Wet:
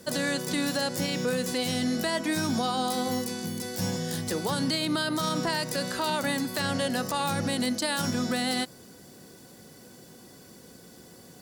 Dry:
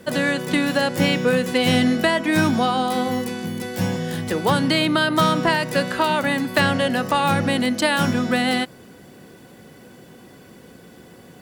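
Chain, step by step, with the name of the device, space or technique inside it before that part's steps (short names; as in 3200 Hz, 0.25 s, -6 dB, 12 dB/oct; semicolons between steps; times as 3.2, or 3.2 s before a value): over-bright horn tweeter (resonant high shelf 3700 Hz +8 dB, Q 1.5; limiter -13 dBFS, peak gain reduction 8.5 dB); gain -6 dB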